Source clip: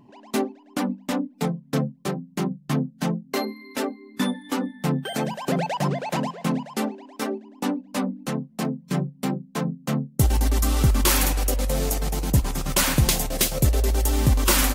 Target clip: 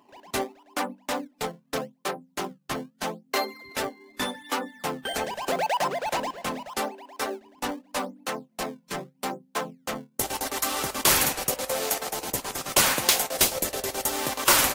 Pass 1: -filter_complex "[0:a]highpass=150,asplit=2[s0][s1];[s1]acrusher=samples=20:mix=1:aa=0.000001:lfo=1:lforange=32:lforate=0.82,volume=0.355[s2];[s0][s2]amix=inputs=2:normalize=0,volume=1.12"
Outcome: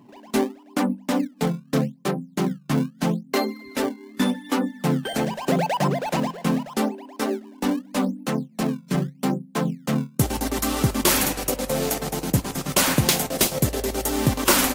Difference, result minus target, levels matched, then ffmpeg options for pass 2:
125 Hz band +13.5 dB
-filter_complex "[0:a]highpass=580,asplit=2[s0][s1];[s1]acrusher=samples=20:mix=1:aa=0.000001:lfo=1:lforange=32:lforate=0.82,volume=0.355[s2];[s0][s2]amix=inputs=2:normalize=0,volume=1.12"

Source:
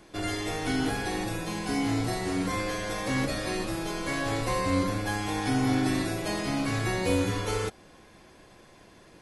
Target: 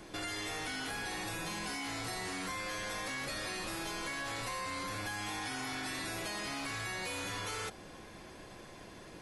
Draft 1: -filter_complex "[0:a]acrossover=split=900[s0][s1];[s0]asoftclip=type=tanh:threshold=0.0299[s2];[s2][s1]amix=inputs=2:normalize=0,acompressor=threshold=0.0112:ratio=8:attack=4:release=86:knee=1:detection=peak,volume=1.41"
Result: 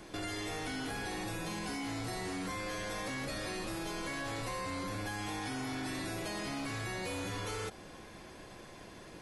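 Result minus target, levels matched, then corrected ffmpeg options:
saturation: distortion -5 dB
-filter_complex "[0:a]acrossover=split=900[s0][s1];[s0]asoftclip=type=tanh:threshold=0.00944[s2];[s2][s1]amix=inputs=2:normalize=0,acompressor=threshold=0.0112:ratio=8:attack=4:release=86:knee=1:detection=peak,volume=1.41"

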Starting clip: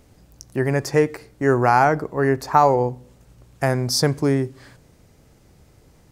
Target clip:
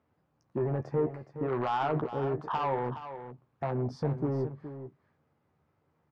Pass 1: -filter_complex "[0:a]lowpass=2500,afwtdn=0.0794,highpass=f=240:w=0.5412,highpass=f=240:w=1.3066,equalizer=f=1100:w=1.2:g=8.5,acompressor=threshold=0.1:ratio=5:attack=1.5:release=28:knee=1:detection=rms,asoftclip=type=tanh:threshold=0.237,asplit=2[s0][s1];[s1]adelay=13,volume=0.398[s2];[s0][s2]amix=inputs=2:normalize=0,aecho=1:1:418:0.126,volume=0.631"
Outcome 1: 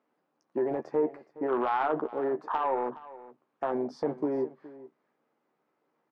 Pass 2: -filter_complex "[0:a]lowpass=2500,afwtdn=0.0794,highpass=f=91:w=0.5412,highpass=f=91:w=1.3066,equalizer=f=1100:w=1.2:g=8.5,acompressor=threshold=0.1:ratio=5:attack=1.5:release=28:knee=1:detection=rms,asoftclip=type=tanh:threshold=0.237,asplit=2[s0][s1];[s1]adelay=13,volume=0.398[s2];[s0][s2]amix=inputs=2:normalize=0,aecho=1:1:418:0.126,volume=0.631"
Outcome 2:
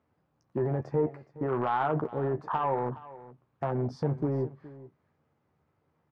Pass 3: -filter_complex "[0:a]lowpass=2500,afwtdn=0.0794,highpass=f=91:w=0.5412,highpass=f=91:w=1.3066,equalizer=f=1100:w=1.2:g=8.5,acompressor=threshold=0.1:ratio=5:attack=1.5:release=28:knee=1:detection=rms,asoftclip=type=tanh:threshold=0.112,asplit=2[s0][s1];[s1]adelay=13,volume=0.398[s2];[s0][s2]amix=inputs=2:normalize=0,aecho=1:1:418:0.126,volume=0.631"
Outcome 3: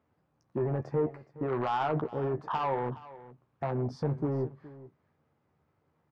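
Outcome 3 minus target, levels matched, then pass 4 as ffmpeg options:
echo-to-direct -6.5 dB
-filter_complex "[0:a]lowpass=2500,afwtdn=0.0794,highpass=f=91:w=0.5412,highpass=f=91:w=1.3066,equalizer=f=1100:w=1.2:g=8.5,acompressor=threshold=0.1:ratio=5:attack=1.5:release=28:knee=1:detection=rms,asoftclip=type=tanh:threshold=0.112,asplit=2[s0][s1];[s1]adelay=13,volume=0.398[s2];[s0][s2]amix=inputs=2:normalize=0,aecho=1:1:418:0.266,volume=0.631"

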